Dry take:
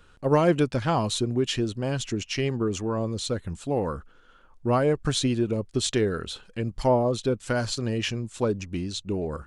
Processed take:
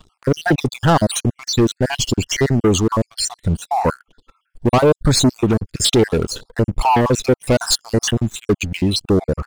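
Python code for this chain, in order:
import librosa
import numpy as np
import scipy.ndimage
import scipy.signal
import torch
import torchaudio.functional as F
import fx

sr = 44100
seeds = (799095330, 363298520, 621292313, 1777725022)

y = fx.spec_dropout(x, sr, seeds[0], share_pct=59)
y = fx.high_shelf(y, sr, hz=6500.0, db=6.5, at=(7.53, 8.26))
y = fx.leveller(y, sr, passes=3)
y = fx.filter_lfo_notch(y, sr, shape='saw_up', hz=0.73, low_hz=490.0, high_hz=5000.0, q=2.5)
y = F.gain(torch.from_numpy(y), 6.0).numpy()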